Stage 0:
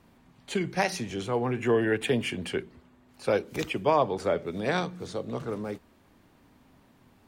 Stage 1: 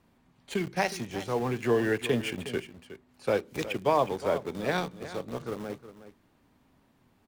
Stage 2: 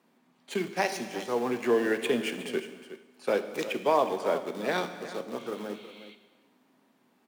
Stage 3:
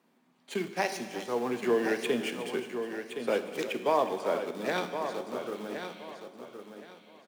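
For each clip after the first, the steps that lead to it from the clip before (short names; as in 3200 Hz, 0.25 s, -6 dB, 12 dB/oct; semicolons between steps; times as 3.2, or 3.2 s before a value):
in parallel at -3 dB: sample gate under -30.5 dBFS; on the sum: echo 0.364 s -13.5 dB; gain -6 dB
HPF 200 Hz 24 dB/oct; spectral repair 5.4–6.12, 2000–4500 Hz before; non-linear reverb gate 0.47 s falling, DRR 9 dB
feedback echo 1.068 s, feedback 24%, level -8.5 dB; gain -2 dB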